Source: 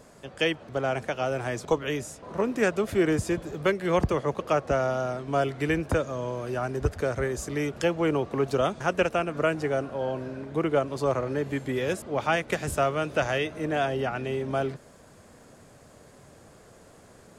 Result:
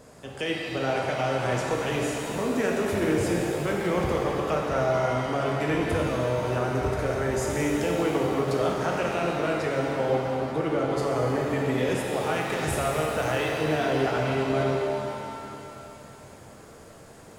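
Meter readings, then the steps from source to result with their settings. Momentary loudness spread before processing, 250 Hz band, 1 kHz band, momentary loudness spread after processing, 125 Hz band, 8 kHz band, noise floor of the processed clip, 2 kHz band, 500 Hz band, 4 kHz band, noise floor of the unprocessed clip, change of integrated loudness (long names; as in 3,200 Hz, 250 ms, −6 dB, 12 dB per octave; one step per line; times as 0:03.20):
6 LU, +2.0 dB, +2.0 dB, 4 LU, +2.5 dB, +3.5 dB, −47 dBFS, +1.0 dB, +1.0 dB, +2.0 dB, −53 dBFS, +1.5 dB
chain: brickwall limiter −20.5 dBFS, peak gain reduction 8 dB
reverb with rising layers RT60 2.9 s, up +7 semitones, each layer −8 dB, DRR −2 dB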